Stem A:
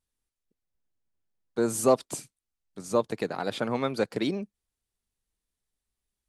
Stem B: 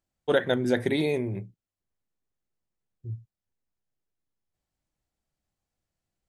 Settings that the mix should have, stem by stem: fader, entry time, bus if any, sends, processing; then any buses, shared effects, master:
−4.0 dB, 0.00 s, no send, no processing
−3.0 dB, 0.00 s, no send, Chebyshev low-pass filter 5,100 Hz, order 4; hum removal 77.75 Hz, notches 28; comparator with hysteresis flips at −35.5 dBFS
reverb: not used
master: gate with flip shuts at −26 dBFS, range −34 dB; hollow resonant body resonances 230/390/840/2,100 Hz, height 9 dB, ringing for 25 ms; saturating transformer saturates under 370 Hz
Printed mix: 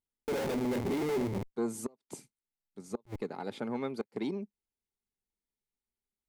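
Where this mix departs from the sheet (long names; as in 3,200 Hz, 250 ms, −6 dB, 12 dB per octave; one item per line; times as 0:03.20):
stem A −4.0 dB → −12.5 dB
stem B: missing Chebyshev low-pass filter 5,100 Hz, order 4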